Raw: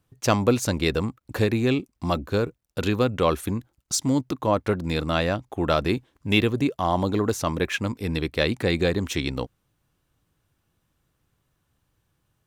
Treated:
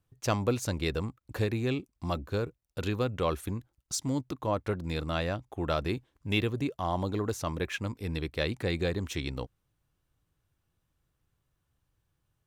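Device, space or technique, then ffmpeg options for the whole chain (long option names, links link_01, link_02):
low shelf boost with a cut just above: -af "lowshelf=frequency=100:gain=6.5,equalizer=frequency=230:width_type=o:width=0.64:gain=-3,volume=-8dB"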